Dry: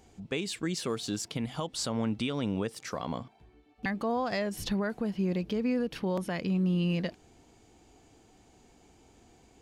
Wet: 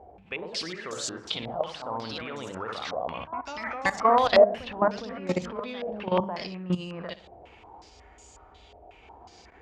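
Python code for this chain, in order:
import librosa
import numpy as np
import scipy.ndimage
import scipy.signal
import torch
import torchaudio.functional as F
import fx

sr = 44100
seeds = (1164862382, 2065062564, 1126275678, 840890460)

y = fx.graphic_eq_10(x, sr, hz=(125, 250, 1000), db=(-11, -11, 3))
y = fx.echo_pitch(y, sr, ms=138, semitones=2, count=3, db_per_echo=-6.0)
y = fx.low_shelf(y, sr, hz=360.0, db=6.5)
y = fx.room_flutter(y, sr, wall_m=10.4, rt60_s=0.36)
y = fx.level_steps(y, sr, step_db=15)
y = scipy.signal.sosfilt(scipy.signal.butter(2, 59.0, 'highpass', fs=sr, output='sos'), y)
y = fx.hum_notches(y, sr, base_hz=50, count=4)
y = fx.spec_freeze(y, sr, seeds[0], at_s=7.91, hold_s=1.12)
y = fx.filter_held_lowpass(y, sr, hz=5.5, low_hz=660.0, high_hz=7200.0)
y = y * librosa.db_to_amplitude(8.0)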